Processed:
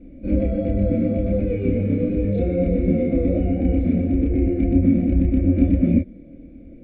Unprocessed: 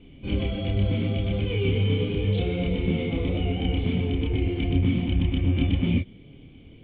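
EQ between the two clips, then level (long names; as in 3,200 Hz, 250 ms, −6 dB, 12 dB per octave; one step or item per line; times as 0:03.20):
high-frequency loss of the air 58 metres
low shelf with overshoot 690 Hz +8.5 dB, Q 3
phaser with its sweep stopped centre 630 Hz, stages 8
0.0 dB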